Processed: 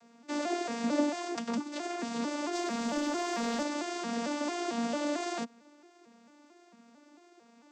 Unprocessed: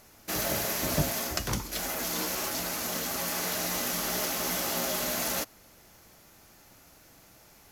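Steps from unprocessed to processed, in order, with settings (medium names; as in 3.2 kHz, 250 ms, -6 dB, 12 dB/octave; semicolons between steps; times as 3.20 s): vocoder on a broken chord major triad, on A#3, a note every 224 ms; 2.53–3.63 s: waveshaping leveller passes 1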